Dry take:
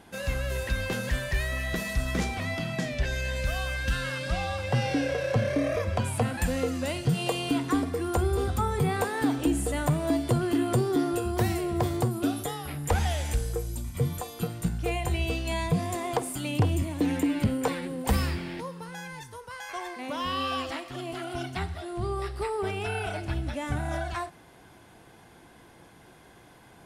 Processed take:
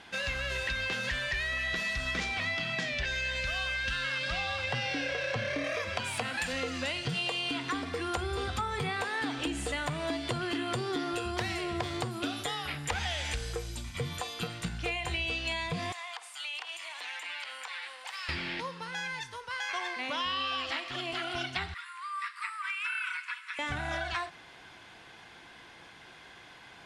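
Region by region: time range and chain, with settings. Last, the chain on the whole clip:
0:05.64–0:06.53: running median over 3 samples + high-pass filter 160 Hz 6 dB per octave + high-shelf EQ 7,900 Hz +11 dB
0:15.92–0:18.29: high-pass filter 800 Hz 24 dB per octave + downward compressor 5 to 1, threshold −42 dBFS
0:21.74–0:23.59: Chebyshev high-pass filter 950 Hz, order 10 + flat-topped bell 4,300 Hz −9 dB 1.3 octaves
whole clip: low-pass filter 3,600 Hz 12 dB per octave; tilt shelving filter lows −10 dB, about 1,200 Hz; downward compressor, threshold −33 dBFS; level +3.5 dB

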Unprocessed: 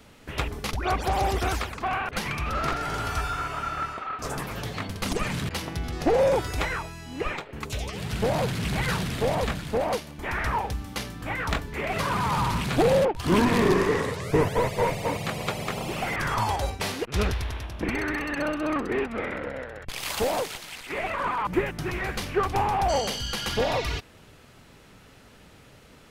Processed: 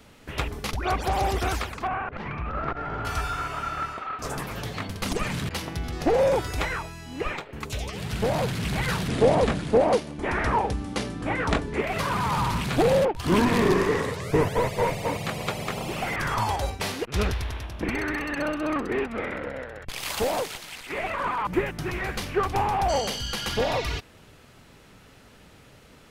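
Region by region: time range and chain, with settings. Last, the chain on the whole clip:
0:01.87–0:03.05: low-pass filter 1,700 Hz + saturating transformer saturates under 180 Hz
0:09.08–0:11.82: Butterworth low-pass 11,000 Hz 96 dB per octave + parametric band 350 Hz +8.5 dB 2.3 octaves
whole clip: no processing

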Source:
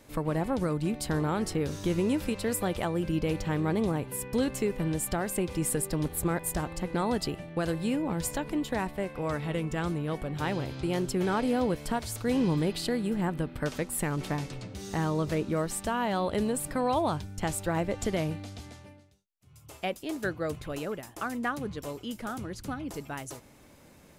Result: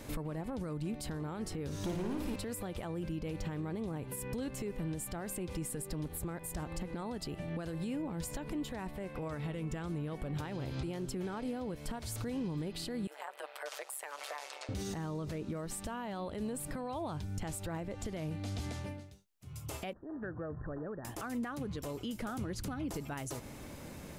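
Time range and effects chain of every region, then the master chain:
0:01.79–0:02.36: hard clipping −29 dBFS + flutter between parallel walls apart 9.6 metres, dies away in 0.73 s
0:13.07–0:14.69: Butterworth high-pass 560 Hz 48 dB per octave + amplitude modulation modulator 140 Hz, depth 75%
0:19.93–0:21.05: linear-phase brick-wall low-pass 1,900 Hz + downward compressor 3 to 1, threshold −50 dBFS
whole clip: downward compressor 6 to 1, threshold −42 dBFS; brickwall limiter −38 dBFS; low-shelf EQ 270 Hz +4 dB; level +6.5 dB

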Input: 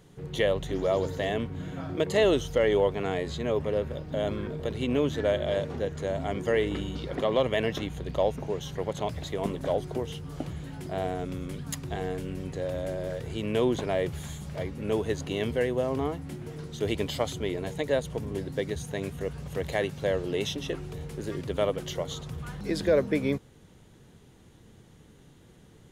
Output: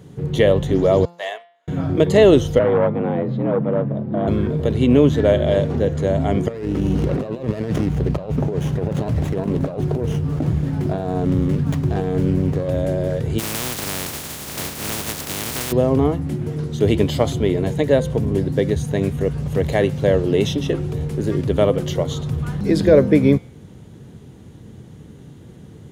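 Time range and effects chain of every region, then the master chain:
0:01.05–0:01.68: high-pass filter 700 Hz 24 dB per octave + expander for the loud parts 2.5 to 1, over −51 dBFS
0:02.59–0:04.28: head-to-tape spacing loss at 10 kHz 43 dB + frequency shifter +60 Hz + saturating transformer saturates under 790 Hz
0:06.48–0:12.69: compressor whose output falls as the input rises −34 dBFS + windowed peak hold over 9 samples
0:13.38–0:15.71: compressing power law on the bin magnitudes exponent 0.12 + downward compressor, threshold −28 dBFS
whole clip: high-pass filter 76 Hz; low-shelf EQ 460 Hz +11.5 dB; hum removal 172.8 Hz, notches 31; level +5.5 dB

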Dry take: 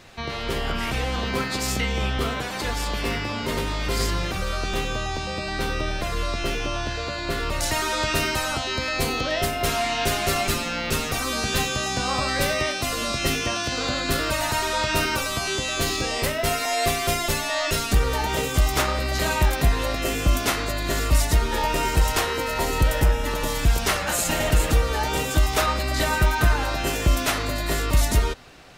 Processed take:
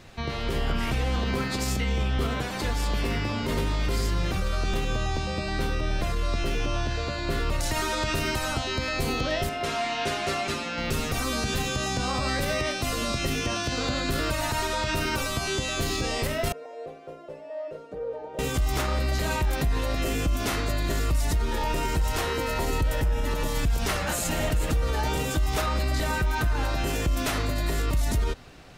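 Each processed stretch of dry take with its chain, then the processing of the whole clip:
0:09.49–0:10.78: high-pass filter 360 Hz 6 dB per octave + high-frequency loss of the air 65 metres
0:16.52–0:18.39: resonant band-pass 520 Hz, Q 5.6 + comb filter 6.5 ms, depth 59%
whole clip: low-shelf EQ 330 Hz +7 dB; brickwall limiter −14 dBFS; level −3.5 dB

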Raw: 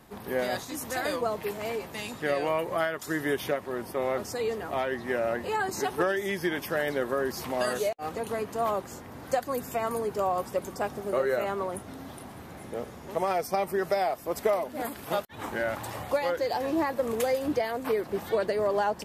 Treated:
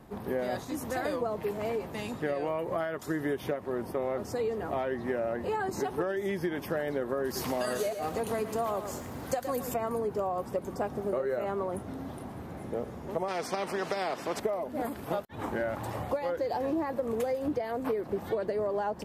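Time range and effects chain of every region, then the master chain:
0:07.24–0:09.74: high-shelf EQ 2,300 Hz +10.5 dB + feedback echo at a low word length 113 ms, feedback 35%, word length 8 bits, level −10.5 dB
0:13.28–0:14.40: band-pass filter 320–5,500 Hz + every bin compressed towards the loudest bin 2 to 1
whole clip: tilt shelving filter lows +5.5 dB, about 1,300 Hz; downward compressor, threshold −26 dBFS; level −1.5 dB

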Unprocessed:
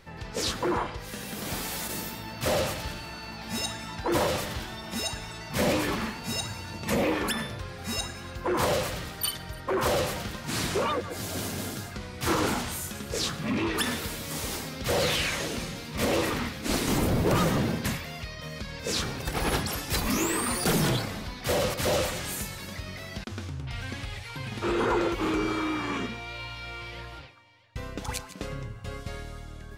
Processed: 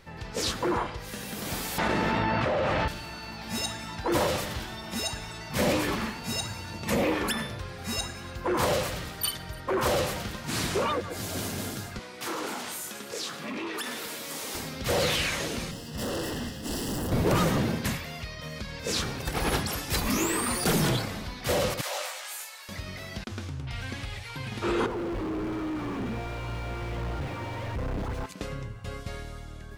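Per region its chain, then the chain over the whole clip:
0:01.78–0:02.88: low-pass filter 2,000 Hz + low-shelf EQ 290 Hz −6 dB + envelope flattener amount 100%
0:11.99–0:14.55: high-pass filter 290 Hz + downward compressor 2.5 to 1, threshold −32 dBFS
0:15.71–0:17.12: lower of the sound and its delayed copy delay 0.38 ms + gain into a clipping stage and back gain 29 dB + Butterworth band-reject 2,300 Hz, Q 3.2
0:21.81–0:22.69: high-pass filter 660 Hz 24 dB per octave + micro pitch shift up and down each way 14 cents
0:24.86–0:28.26: sign of each sample alone + low-pass filter 1,100 Hz 6 dB per octave + tilt shelving filter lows +3.5 dB, about 780 Hz
whole clip: no processing

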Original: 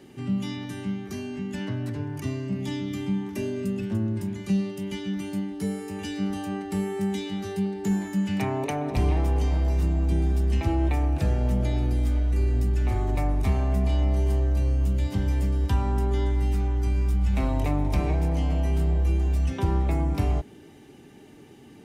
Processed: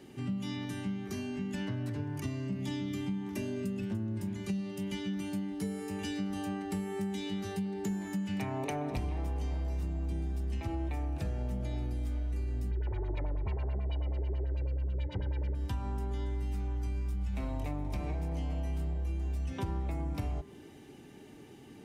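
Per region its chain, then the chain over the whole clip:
0:12.71–0:15.55: comb filter 2.1 ms, depth 74% + auto-filter low-pass sine 9.2 Hz 300–3,900 Hz
whole clip: hum removal 79.04 Hz, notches 27; downward compressor, threshold −29 dBFS; level −2.5 dB

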